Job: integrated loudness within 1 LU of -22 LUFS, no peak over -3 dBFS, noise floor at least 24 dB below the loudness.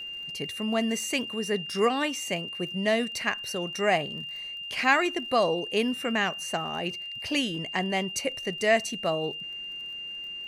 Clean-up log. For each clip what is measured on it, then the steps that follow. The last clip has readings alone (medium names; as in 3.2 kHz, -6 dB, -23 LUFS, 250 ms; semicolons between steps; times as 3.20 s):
tick rate 39 per s; steady tone 2.8 kHz; tone level -35 dBFS; loudness -28.0 LUFS; peak level -8.0 dBFS; loudness target -22.0 LUFS
-> de-click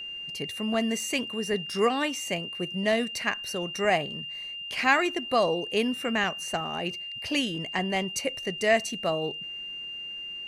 tick rate 0.19 per s; steady tone 2.8 kHz; tone level -35 dBFS
-> band-stop 2.8 kHz, Q 30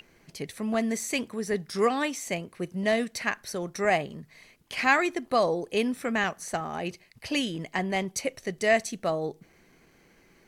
steady tone not found; loudness -28.5 LUFS; peak level -8.0 dBFS; loudness target -22.0 LUFS
-> trim +6.5 dB; peak limiter -3 dBFS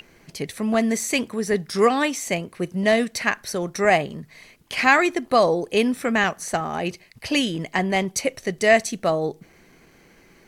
loudness -22.0 LUFS; peak level -3.0 dBFS; noise floor -54 dBFS